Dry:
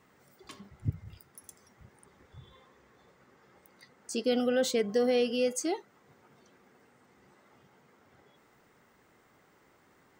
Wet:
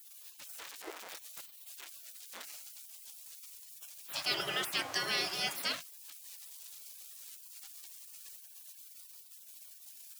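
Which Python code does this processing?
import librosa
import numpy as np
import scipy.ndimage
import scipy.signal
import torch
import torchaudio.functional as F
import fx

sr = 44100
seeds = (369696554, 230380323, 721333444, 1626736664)

y = x + 0.5 * 10.0 ** (-43.0 / 20.0) * np.sign(x)
y = fx.spec_gate(y, sr, threshold_db=-25, keep='weak')
y = scipy.signal.sosfilt(scipy.signal.bessel(2, 180.0, 'highpass', norm='mag', fs=sr, output='sos'), y)
y = y * librosa.db_to_amplitude(10.5)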